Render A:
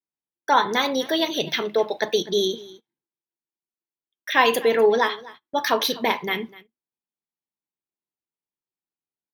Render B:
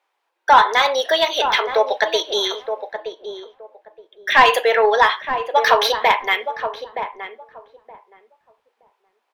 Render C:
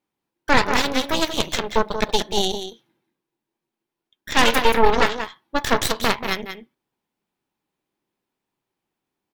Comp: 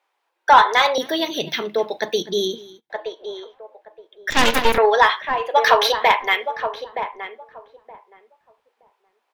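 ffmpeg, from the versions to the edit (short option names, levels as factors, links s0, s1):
-filter_complex "[1:a]asplit=3[s0][s1][s2];[s0]atrim=end=0.982[s3];[0:a]atrim=start=0.978:end=2.902[s4];[s1]atrim=start=2.898:end=4.302[s5];[2:a]atrim=start=4.298:end=4.782[s6];[s2]atrim=start=4.778[s7];[s3][s4]acrossfade=d=0.004:c1=hsin:c2=hsin[s8];[s8][s5]acrossfade=d=0.004:c1=hsin:c2=hsin[s9];[s9][s6]acrossfade=d=0.004:c1=hsin:c2=hsin[s10];[s10][s7]acrossfade=d=0.004:c1=hsin:c2=hsin"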